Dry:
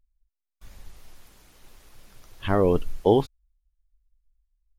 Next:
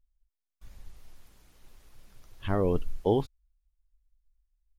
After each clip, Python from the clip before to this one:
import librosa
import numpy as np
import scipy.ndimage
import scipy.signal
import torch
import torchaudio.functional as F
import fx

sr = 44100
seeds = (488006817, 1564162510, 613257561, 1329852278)

y = fx.low_shelf(x, sr, hz=190.0, db=5.5)
y = y * 10.0 ** (-7.5 / 20.0)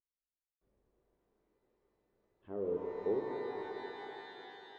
y = fx.bandpass_q(x, sr, hz=410.0, q=2.9)
y = fx.rev_shimmer(y, sr, seeds[0], rt60_s=3.9, semitones=12, shimmer_db=-8, drr_db=0.0)
y = y * 10.0 ** (-7.0 / 20.0)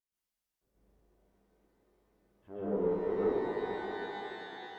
y = fx.tube_stage(x, sr, drive_db=28.0, bias=0.25)
y = fx.rev_plate(y, sr, seeds[1], rt60_s=0.62, hf_ratio=0.95, predelay_ms=110, drr_db=-8.5)
y = y * 10.0 ** (-2.0 / 20.0)